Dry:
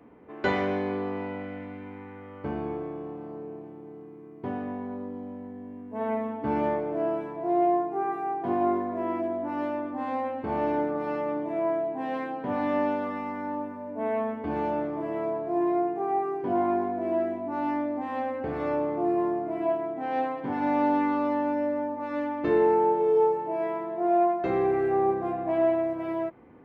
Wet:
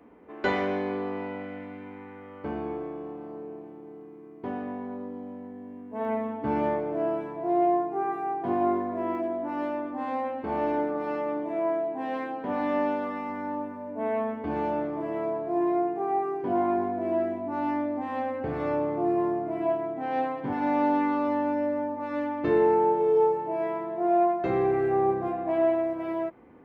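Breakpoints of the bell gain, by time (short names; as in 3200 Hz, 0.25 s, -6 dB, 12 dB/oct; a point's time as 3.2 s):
bell 120 Hz 0.65 oct
-10.5 dB
from 6.05 s +0.5 dB
from 9.15 s -10.5 dB
from 13.29 s -1 dB
from 16.78 s +6 dB
from 20.53 s -4 dB
from 21.28 s +4.5 dB
from 25.28 s -5.5 dB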